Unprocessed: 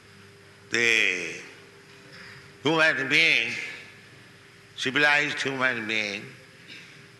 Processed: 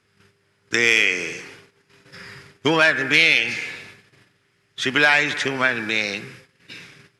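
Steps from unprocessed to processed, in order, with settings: gate -47 dBFS, range -18 dB; gain +4.5 dB

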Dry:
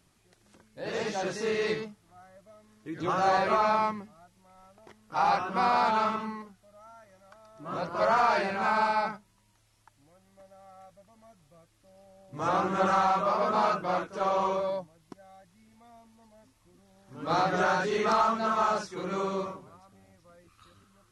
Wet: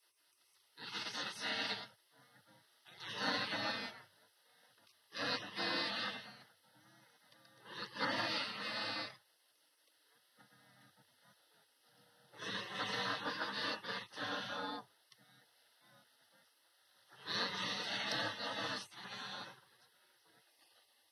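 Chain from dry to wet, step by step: fixed phaser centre 1500 Hz, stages 8; spectral gate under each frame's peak -20 dB weak; frequency shift +95 Hz; gain +4 dB

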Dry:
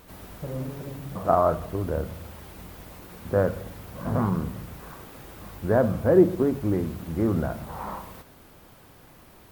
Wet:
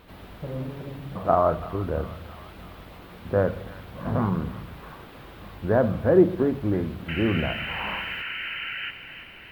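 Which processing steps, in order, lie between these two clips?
painted sound noise, 7.08–8.91, 1300–3100 Hz -35 dBFS; resonant high shelf 4800 Hz -10 dB, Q 1.5; thin delay 0.333 s, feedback 62%, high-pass 1400 Hz, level -10.5 dB

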